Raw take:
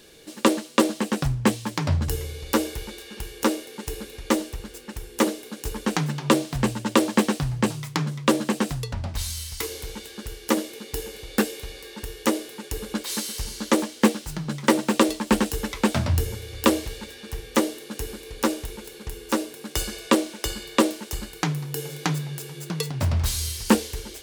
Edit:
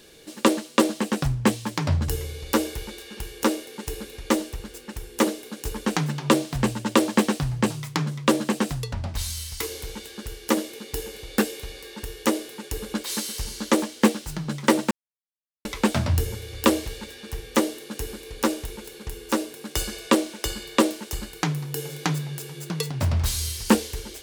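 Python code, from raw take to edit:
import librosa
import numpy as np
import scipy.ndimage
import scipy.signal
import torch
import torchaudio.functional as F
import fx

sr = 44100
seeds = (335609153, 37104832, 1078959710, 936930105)

y = fx.edit(x, sr, fx.silence(start_s=14.91, length_s=0.74), tone=tone)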